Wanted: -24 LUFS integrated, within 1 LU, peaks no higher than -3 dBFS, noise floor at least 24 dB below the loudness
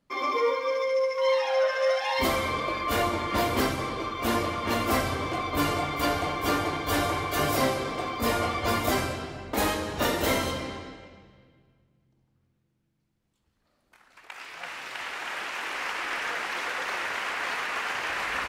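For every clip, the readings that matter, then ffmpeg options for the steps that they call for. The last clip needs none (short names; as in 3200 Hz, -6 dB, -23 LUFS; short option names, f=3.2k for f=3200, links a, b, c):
loudness -27.5 LUFS; peak -13.5 dBFS; loudness target -24.0 LUFS
-> -af "volume=3.5dB"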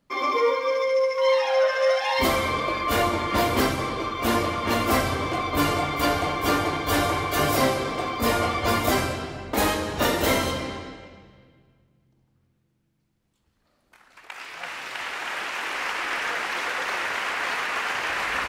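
loudness -24.0 LUFS; peak -10.0 dBFS; noise floor -70 dBFS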